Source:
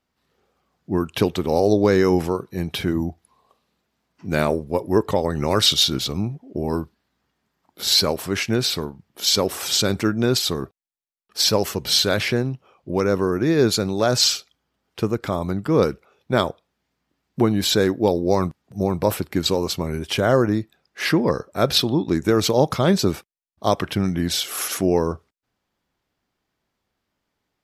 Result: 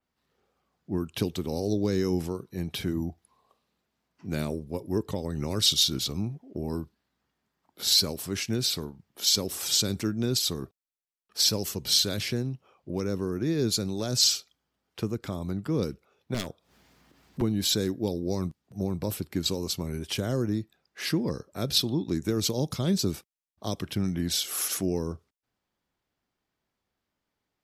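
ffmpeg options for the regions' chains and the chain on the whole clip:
ffmpeg -i in.wav -filter_complex "[0:a]asettb=1/sr,asplit=3[link_01][link_02][link_03];[link_01]atrim=end=16.344[link_04];[link_02]atrim=start=16.34:end=17.42,asetpts=PTS-STARTPTS,afade=type=in:duration=0.004:curve=qsin,afade=type=out:start_time=1.076:duration=0.004:curve=qsin,acompressor=mode=upward:threshold=-37dB:ratio=2.5:attack=3.2:release=140:knee=2.83:detection=peak,aeval=exprs='0.188*(abs(mod(val(0)/0.188+3,4)-2)-1)':channel_layout=same[link_05];[link_03]atrim=start=17.416[link_06];[link_04][link_05]acrossfade=duration=0.004:curve1=hsin:curve2=qsin[link_07];[link_07][link_06]acrossfade=duration=0.004:curve1=qsin:curve2=hsin,acrossover=split=360|3000[link_08][link_09][link_10];[link_09]acompressor=threshold=-37dB:ratio=2.5[link_11];[link_08][link_11][link_10]amix=inputs=3:normalize=0,adynamicequalizer=threshold=0.0224:dfrequency=4000:dqfactor=0.7:tfrequency=4000:tqfactor=0.7:attack=5:release=100:ratio=0.375:range=2:mode=boostabove:tftype=highshelf,volume=-6dB" out.wav

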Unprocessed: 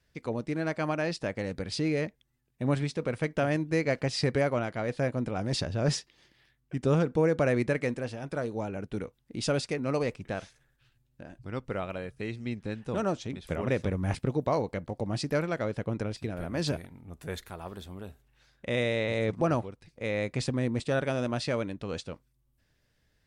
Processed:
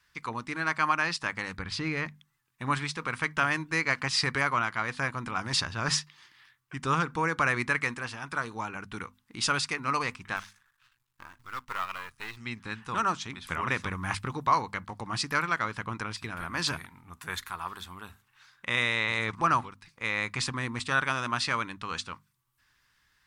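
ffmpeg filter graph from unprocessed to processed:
ffmpeg -i in.wav -filter_complex "[0:a]asettb=1/sr,asplit=3[link_01][link_02][link_03];[link_01]atrim=end=1.574[link_04];[link_02]atrim=start=1.57:end=2.06,asetpts=PTS-STARTPTS,afade=type=in:duration=0.004:curve=qsin,afade=type=out:start_time=0.486:duration=0.004:curve=qsin,lowpass=frequency=2800:poles=1,lowshelf=frequency=130:gain=8.5[link_05];[link_03]atrim=start=2.056[link_06];[link_04][link_05]acrossfade=duration=0.004:curve1=hsin:curve2=qsin[link_07];[link_07][link_06]acrossfade=duration=0.004:curve1=qsin:curve2=hsin,asettb=1/sr,asplit=3[link_08][link_09][link_10];[link_08]atrim=end=10.364[link_11];[link_09]atrim=start=10.36:end=12.37,asetpts=PTS-STARTPTS,afade=type=in:duration=0.004:curve=qsin,afade=type=out:start_time=2.006:duration=0.004:curve=qsin,aeval=exprs='if(lt(val(0),0),0.251*val(0),val(0))':channel_layout=same,equalizer=frequency=190:width_type=o:width=1.7:gain=-6,acrusher=bits=6:mode=log:mix=0:aa=0.000001[link_12];[link_10]atrim=start=12.366[link_13];[link_11][link_12]acrossfade=duration=0.004:curve1=hsin:curve2=qsin[link_14];[link_14][link_13]acrossfade=duration=0.004:curve1=qsin:curve2=hsin,lowshelf=frequency=790:width_type=q:width=3:gain=-10.5,bandreject=frequency=50:width_type=h:width=6,bandreject=frequency=100:width_type=h:width=6,bandreject=frequency=150:width_type=h:width=6,bandreject=frequency=200:width_type=h:width=6,bandreject=frequency=250:width_type=h:width=6,volume=6dB" out.wav

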